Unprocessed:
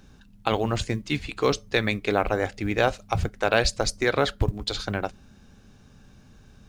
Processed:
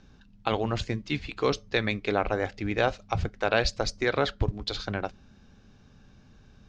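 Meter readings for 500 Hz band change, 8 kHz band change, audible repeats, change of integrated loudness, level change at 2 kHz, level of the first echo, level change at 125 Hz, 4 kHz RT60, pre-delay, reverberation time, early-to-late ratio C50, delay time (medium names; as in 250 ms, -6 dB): -3.0 dB, -8.0 dB, no echo, -3.0 dB, -3.0 dB, no echo, -3.0 dB, no reverb, no reverb, no reverb, no reverb, no echo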